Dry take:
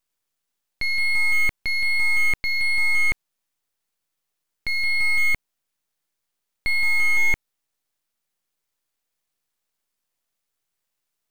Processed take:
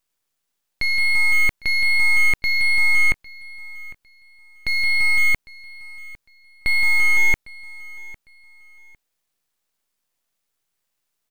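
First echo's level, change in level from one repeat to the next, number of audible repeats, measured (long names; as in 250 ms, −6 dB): −21.0 dB, −11.5 dB, 2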